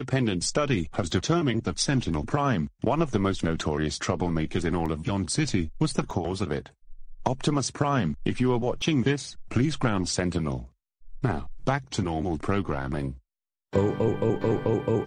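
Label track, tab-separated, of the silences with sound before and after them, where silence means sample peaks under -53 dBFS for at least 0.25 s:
10.690000	11.010000	silence
13.200000	13.730000	silence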